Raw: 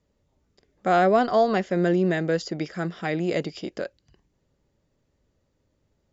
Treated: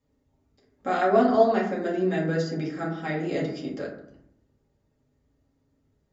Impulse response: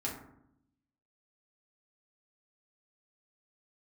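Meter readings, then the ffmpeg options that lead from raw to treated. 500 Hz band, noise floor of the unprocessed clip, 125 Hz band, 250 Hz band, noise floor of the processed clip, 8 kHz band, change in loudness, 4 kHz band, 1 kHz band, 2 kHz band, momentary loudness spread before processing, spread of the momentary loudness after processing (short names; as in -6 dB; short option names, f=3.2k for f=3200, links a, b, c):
-1.0 dB, -72 dBFS, -2.5 dB, -1.0 dB, -72 dBFS, n/a, -1.5 dB, -4.5 dB, -2.0 dB, -2.5 dB, 14 LU, 14 LU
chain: -filter_complex "[1:a]atrim=start_sample=2205[a];[0:a][a]afir=irnorm=-1:irlink=0,volume=-4.5dB"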